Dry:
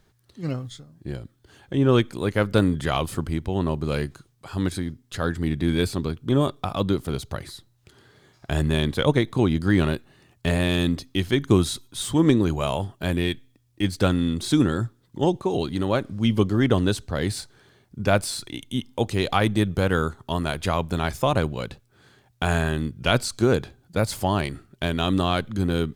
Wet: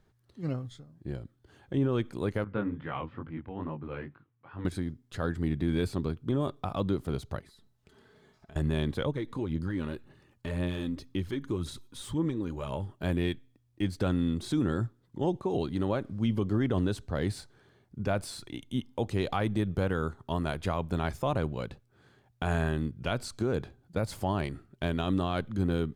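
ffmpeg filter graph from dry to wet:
-filter_complex "[0:a]asettb=1/sr,asplit=3[a][b][c];[a]atrim=end=2.444[d];[b]atrim=start=2.44:end=4.65,asetpts=PTS-STARTPTS,afade=t=in:d=0.004:c=qsin,afade=t=out:st=2.206:d=0.004:c=qsin,highpass=120,equalizer=f=180:t=q:w=4:g=-9,equalizer=f=390:t=q:w=4:g=-8,equalizer=f=640:t=q:w=4:g=-7,lowpass=f=2.6k:w=0.5412,lowpass=f=2.6k:w=1.3066,flanger=delay=18.5:depth=7:speed=2.3[e];[c]atrim=start=4.646[f];[d][e]acrossfade=d=0.004:c1=hsin:c2=qsin[g];[g][f]acrossfade=d=0.004:c1=qsin:c2=hsin,asettb=1/sr,asplit=3[h][i][j];[h]atrim=end=7.394[k];[i]atrim=start=7.39:end=8.56,asetpts=PTS-STARTPTS,afade=t=in:d=0.004:c=qsin,afade=t=out:st=1.166:d=0.004:c=qsin,aecho=1:1:4.6:0.59,atrim=end_sample=51597,acompressor=threshold=-47dB:ratio=4:attack=3.2:release=140:knee=1:detection=peak[l];[j]atrim=start=8.556[m];[k][l]acrossfade=d=0.004:c1=hsin:c2=qsin[n];[n][m]acrossfade=d=0.004:c1=qsin:c2=hsin,asettb=1/sr,asplit=3[o][p][q];[o]atrim=end=9.064[r];[p]atrim=start=9.06:end=12.94,asetpts=PTS-STARTPTS,afade=t=in:d=0.004:c=qsin,afade=t=out:st=3.876:d=0.004:c=qsin,acompressor=threshold=-31dB:ratio=2:attack=3.2:release=140:knee=1:detection=peak,aphaser=in_gain=1:out_gain=1:delay=4.2:decay=0.42:speed=1.9:type=sinusoidal,asuperstop=centerf=700:order=4:qfactor=5.9[s];[q]atrim=start=12.936[t];[r][s]acrossfade=d=0.004:c1=hsin:c2=qsin[u];[u][t]acrossfade=d=0.004:c1=qsin:c2=hsin,highshelf=f=2.3k:g=-8.5,alimiter=limit=-14.5dB:level=0:latency=1:release=61,volume=-4.5dB"

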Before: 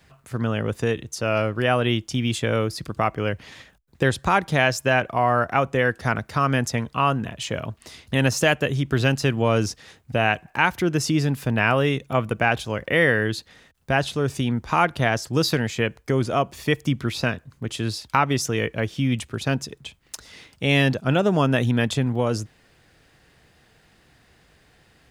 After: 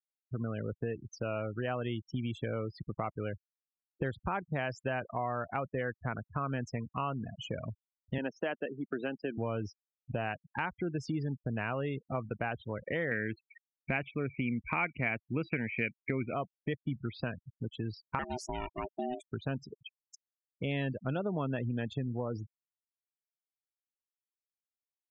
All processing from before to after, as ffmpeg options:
-filter_complex "[0:a]asettb=1/sr,asplit=3[a][b][c];[a]atrim=end=8.184[d];[b]atrim=start=8.18:end=9.38,asetpts=PTS-STARTPTS,afade=t=in:d=0.004:c=qsin,afade=t=out:st=1.196:d=0.004:c=qsin,highpass=f=220:w=0.5412,highpass=f=220:w=1.3066,equalizer=f=9.4k:t=o:w=1.6:g=-12.5[e];[c]atrim=start=9.376[f];[d][e]acrossfade=d=0.004:c1=hsin:c2=qsin[g];[g][f]acrossfade=d=0.004:c1=qsin:c2=hsin,asettb=1/sr,asplit=3[h][i][j];[h]atrim=end=13.114[k];[i]atrim=start=13.11:end=16.34,asetpts=PTS-STARTPTS,afade=t=in:d=0.004:c=qsin,afade=t=out:st=3.226:d=0.004:c=qsin,lowpass=f=2.3k:t=q:w=12,equalizer=f=240:t=o:w=1:g=6[l];[j]atrim=start=16.336[m];[k][l]acrossfade=d=0.004:c1=hsin:c2=qsin[n];[n][m]acrossfade=d=0.004:c1=qsin:c2=hsin,asettb=1/sr,asplit=3[o][p][q];[o]atrim=end=18.194[r];[p]atrim=start=18.19:end=19.32,asetpts=PTS-STARTPTS,afade=t=in:d=0.004:c=qsin,afade=t=out:st=1.126:d=0.004:c=qsin,aeval=exprs='val(0)*sin(2*PI*500*n/s)':c=same,aemphasis=mode=production:type=cd,acrusher=bits=4:mode=log:mix=0:aa=0.000001[s];[q]atrim=start=19.316[t];[r][s]acrossfade=d=0.004:c1=hsin:c2=qsin[u];[u][t]acrossfade=d=0.004:c1=qsin:c2=hsin,afftfilt=real='re*gte(hypot(re,im),0.0631)':imag='im*gte(hypot(re,im),0.0631)':win_size=1024:overlap=0.75,lowpass=f=1.9k:p=1,acompressor=threshold=-33dB:ratio=2.5,volume=-3dB"

